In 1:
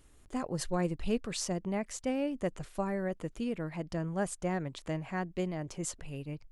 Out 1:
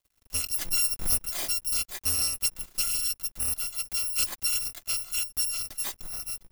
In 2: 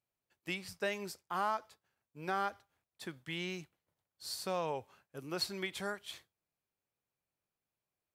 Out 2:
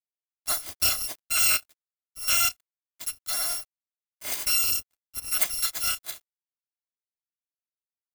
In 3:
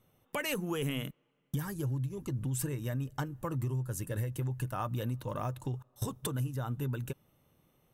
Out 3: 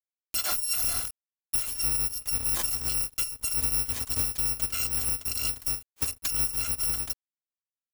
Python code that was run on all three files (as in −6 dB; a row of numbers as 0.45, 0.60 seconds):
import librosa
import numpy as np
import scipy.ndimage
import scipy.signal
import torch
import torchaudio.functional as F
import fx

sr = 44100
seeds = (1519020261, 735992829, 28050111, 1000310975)

y = fx.bit_reversed(x, sr, seeds[0], block=256)
y = np.sign(y) * np.maximum(np.abs(y) - 10.0 ** (-55.5 / 20.0), 0.0)
y = y * 10.0 ** (-30 / 20.0) / np.sqrt(np.mean(np.square(y)))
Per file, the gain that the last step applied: +5.5, +12.5, +6.5 decibels